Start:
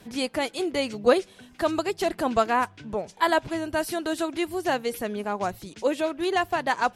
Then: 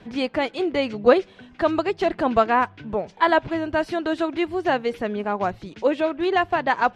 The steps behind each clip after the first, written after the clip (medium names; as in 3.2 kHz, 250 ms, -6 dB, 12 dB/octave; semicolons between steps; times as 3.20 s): low-pass 3.1 kHz 12 dB/octave; trim +4 dB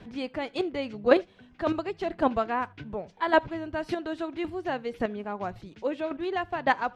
bass shelf 200 Hz +5 dB; square tremolo 1.8 Hz, depth 60%, duty 10%; reverberation, pre-delay 3 ms, DRR 23 dB; trim -2 dB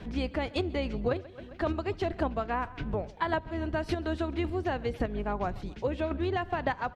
octave divider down 2 oct, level +1 dB; feedback delay 133 ms, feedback 52%, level -24 dB; compression 16:1, threshold -29 dBFS, peak gain reduction 18 dB; trim +3.5 dB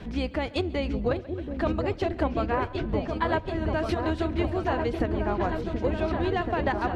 delay with an opening low-pass 730 ms, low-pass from 400 Hz, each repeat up 2 oct, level -3 dB; trim +2.5 dB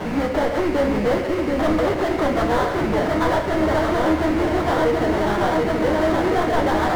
sample-rate reducer 2.5 kHz, jitter 20%; overdrive pedal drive 31 dB, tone 1.3 kHz, clips at -13 dBFS; simulated room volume 110 m³, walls mixed, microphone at 0.5 m